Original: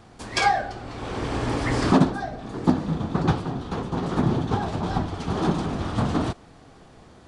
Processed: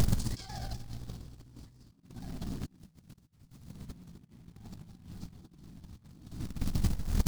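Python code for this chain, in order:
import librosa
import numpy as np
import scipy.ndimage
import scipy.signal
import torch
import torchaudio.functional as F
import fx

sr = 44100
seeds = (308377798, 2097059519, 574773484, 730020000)

p1 = fx.halfwave_hold(x, sr, at=(2.77, 3.68))
p2 = fx.dmg_noise_colour(p1, sr, seeds[0], colour='brown', level_db=-39.0)
p3 = fx.curve_eq(p2, sr, hz=(180.0, 440.0, 2300.0, 4500.0), db=(0, -17, -21, -4))
p4 = fx.echo_feedback(p3, sr, ms=187, feedback_pct=57, wet_db=-14.5)
p5 = fx.quant_float(p4, sr, bits=2)
p6 = p5 + fx.echo_multitap(p5, sr, ms=(50, 53, 66, 94), db=(-12.5, -17.5, -9.5, -14.0), dry=0)
p7 = fx.over_compress(p6, sr, threshold_db=-47.0, ratio=-0.5)
p8 = fx.vibrato_shape(p7, sr, shape='saw_down', rate_hz=4.1, depth_cents=100.0)
y = p8 * librosa.db_to_amplitude(12.0)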